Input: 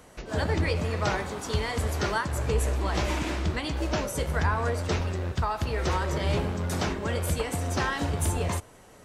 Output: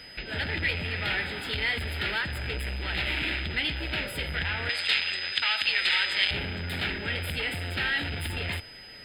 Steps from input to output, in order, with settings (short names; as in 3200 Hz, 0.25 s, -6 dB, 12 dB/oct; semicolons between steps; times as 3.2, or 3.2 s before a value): soft clip -30.5 dBFS, distortion -8 dB; band shelf 2000 Hz +13.5 dB 2.6 oct; fixed phaser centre 2600 Hz, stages 4; whine 5000 Hz -46 dBFS; 4.69–6.31 weighting filter ITU-R 468